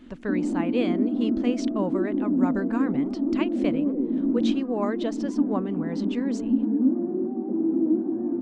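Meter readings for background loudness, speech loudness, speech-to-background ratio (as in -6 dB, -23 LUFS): -26.0 LUFS, -31.0 LUFS, -5.0 dB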